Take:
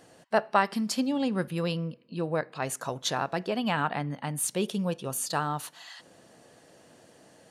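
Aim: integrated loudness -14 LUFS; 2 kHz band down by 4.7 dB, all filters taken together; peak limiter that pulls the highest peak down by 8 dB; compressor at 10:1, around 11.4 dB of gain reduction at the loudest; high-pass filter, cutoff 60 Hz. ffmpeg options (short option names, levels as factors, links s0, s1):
-af "highpass=60,equalizer=f=2000:t=o:g=-6.5,acompressor=threshold=0.0316:ratio=10,volume=15,alimiter=limit=0.631:level=0:latency=1"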